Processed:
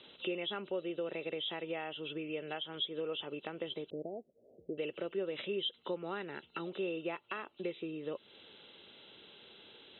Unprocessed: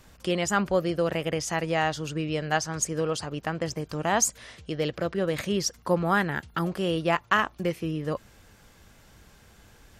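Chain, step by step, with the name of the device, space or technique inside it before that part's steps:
hearing aid with frequency lowering (hearing-aid frequency compression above 2,600 Hz 4 to 1; downward compressor 3 to 1, threshold −38 dBFS, peak gain reduction 16.5 dB; loudspeaker in its box 330–6,500 Hz, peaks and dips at 390 Hz +6 dB, 720 Hz −7 dB, 1,100 Hz −8 dB, 1,700 Hz −9 dB)
0:03.90–0:04.78: Butterworth low-pass 710 Hz 72 dB per octave
level +1 dB

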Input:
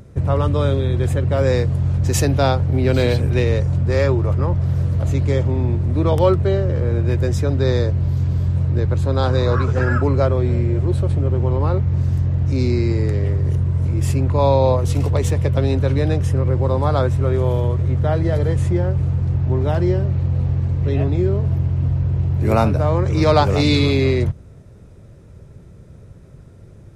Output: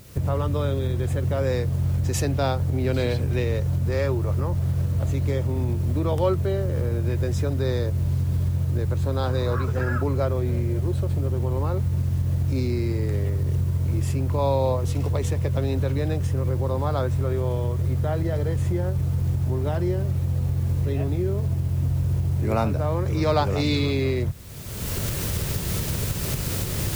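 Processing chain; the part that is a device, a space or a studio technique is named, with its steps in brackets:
cheap recorder with automatic gain (white noise bed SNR 30 dB; camcorder AGC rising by 33 dB per second)
level −7 dB

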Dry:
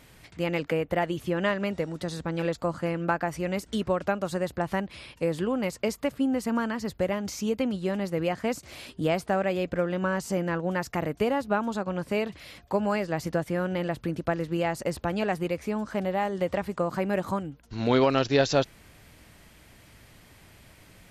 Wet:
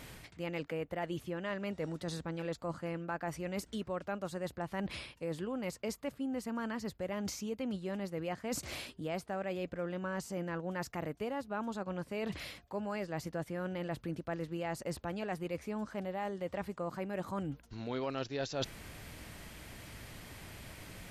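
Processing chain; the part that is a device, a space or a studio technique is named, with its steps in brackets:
compression on the reversed sound (reversed playback; downward compressor 6 to 1, threshold −40 dBFS, peak gain reduction 20.5 dB; reversed playback)
level +4 dB

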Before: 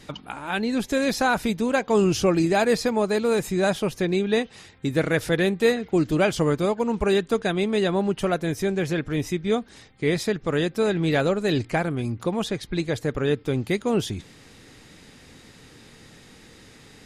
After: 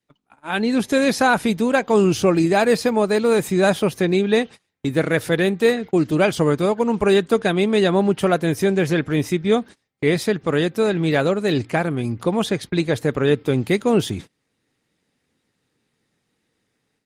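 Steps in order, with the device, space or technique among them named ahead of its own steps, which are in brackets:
video call (high-pass filter 100 Hz 12 dB per octave; automatic gain control gain up to 11 dB; noise gate −29 dBFS, range −28 dB; level −3.5 dB; Opus 32 kbit/s 48,000 Hz)

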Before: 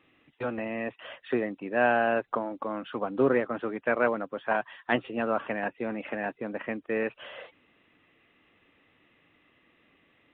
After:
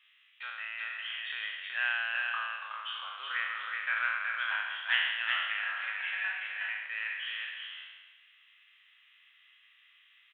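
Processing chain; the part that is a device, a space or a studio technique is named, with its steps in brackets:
peak hold with a decay on every bin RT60 1.31 s
headphones lying on a table (high-pass filter 1,500 Hz 24 dB per octave; parametric band 3,200 Hz +9.5 dB 0.33 octaves)
0:05.78–0:06.43: comb filter 5.3 ms, depth 96%
single-tap delay 373 ms −4 dB
level −1.5 dB

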